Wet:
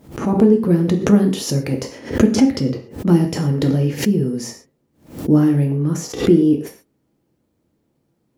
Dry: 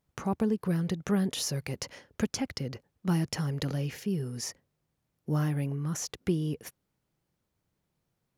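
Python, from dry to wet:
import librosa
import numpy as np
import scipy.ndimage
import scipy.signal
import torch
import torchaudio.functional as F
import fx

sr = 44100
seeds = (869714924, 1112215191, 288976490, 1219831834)

y = fx.peak_eq(x, sr, hz=300.0, db=14.5, octaves=2.1)
y = fx.rev_gated(y, sr, seeds[0], gate_ms=160, shape='falling', drr_db=2.0)
y = fx.pre_swell(y, sr, db_per_s=140.0)
y = y * librosa.db_to_amplitude(2.5)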